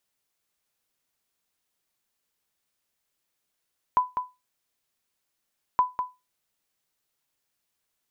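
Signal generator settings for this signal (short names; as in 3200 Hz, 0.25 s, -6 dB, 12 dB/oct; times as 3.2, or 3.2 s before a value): sonar ping 1000 Hz, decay 0.23 s, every 1.82 s, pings 2, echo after 0.20 s, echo -7.5 dB -12.5 dBFS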